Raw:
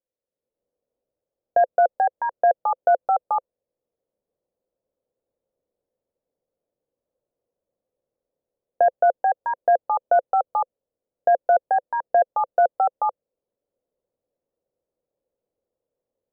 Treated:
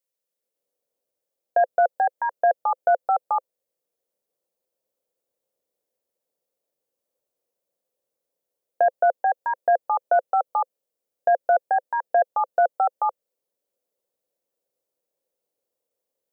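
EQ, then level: tilt EQ +3 dB/octave; 0.0 dB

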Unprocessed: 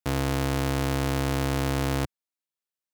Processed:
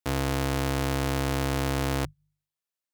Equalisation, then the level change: peaking EQ 200 Hz -2 dB 1.7 oct; hum notches 50/100/150 Hz; hum notches 50/100/150 Hz; 0.0 dB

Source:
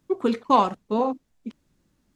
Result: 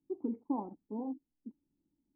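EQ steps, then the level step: cascade formant filter u; distance through air 340 m; peaking EQ 2.4 kHz +3.5 dB; -4.5 dB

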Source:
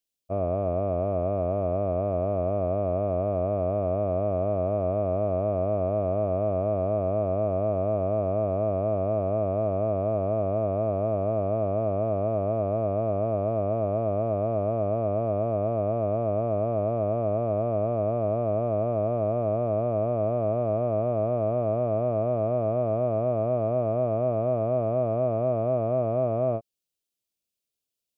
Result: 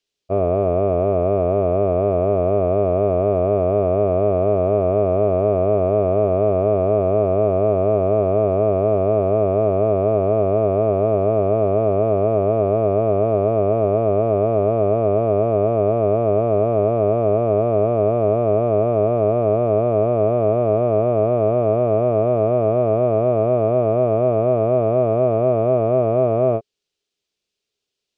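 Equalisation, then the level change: distance through air 150 m; peaking EQ 410 Hz +12 dB 0.27 oct; treble shelf 2.1 kHz +11 dB; +6.5 dB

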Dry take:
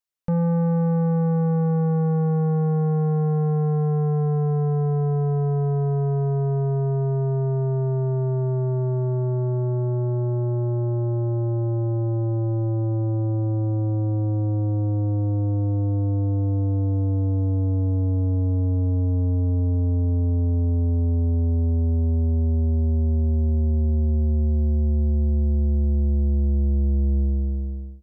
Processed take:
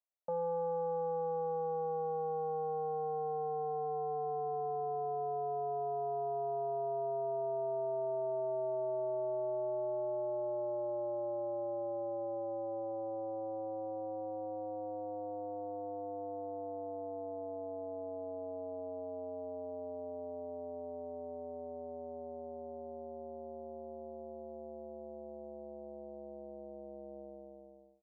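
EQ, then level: resonant high-pass 630 Hz, resonance Q 4; low-pass 1.1 kHz 24 dB/octave; -9.0 dB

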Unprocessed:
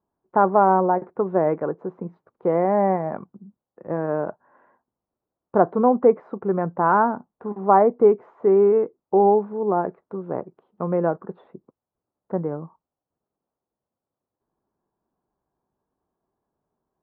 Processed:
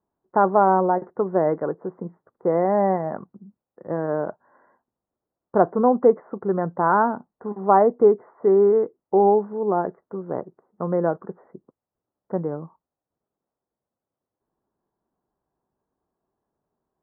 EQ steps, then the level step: Chebyshev low-pass 2 kHz, order 6; 0.0 dB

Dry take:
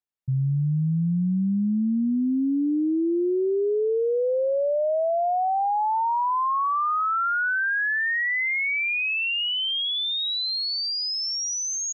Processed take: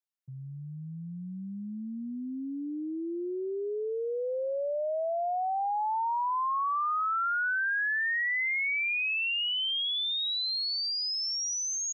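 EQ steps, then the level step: high-pass 700 Hz 6 dB/octave; -4.0 dB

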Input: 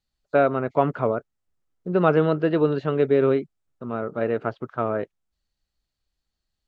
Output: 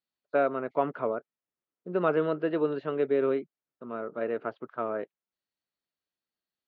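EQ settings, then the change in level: band-pass 240–3600 Hz; band-stop 790 Hz, Q 17; -6.0 dB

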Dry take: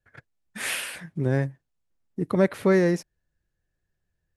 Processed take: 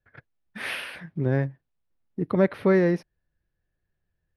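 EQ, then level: boxcar filter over 6 samples; 0.0 dB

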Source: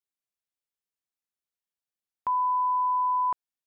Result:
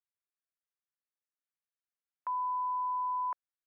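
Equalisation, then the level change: Butterworth band-pass 1.1 kHz, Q 0.88; peaking EQ 830 Hz -12 dB; 0.0 dB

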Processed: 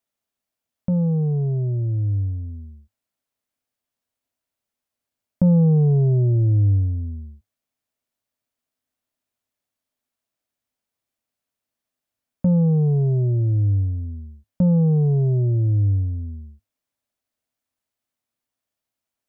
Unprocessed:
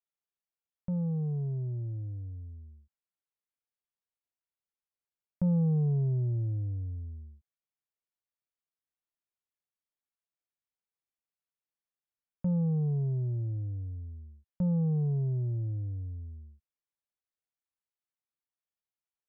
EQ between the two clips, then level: graphic EQ with 31 bands 100 Hz +8 dB, 250 Hz +11 dB, 630 Hz +7 dB; dynamic bell 370 Hz, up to +6 dB, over -45 dBFS, Q 2; +9.0 dB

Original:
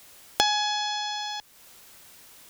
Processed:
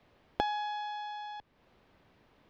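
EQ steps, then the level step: distance through air 330 m; tilt shelf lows +5.5 dB, about 900 Hz; band-stop 1.4 kHz, Q 22; -5.0 dB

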